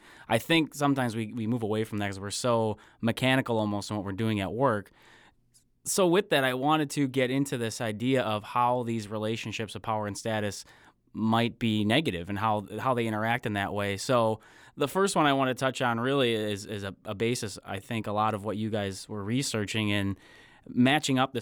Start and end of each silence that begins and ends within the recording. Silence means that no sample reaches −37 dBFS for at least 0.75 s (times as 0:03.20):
0:04.82–0:05.86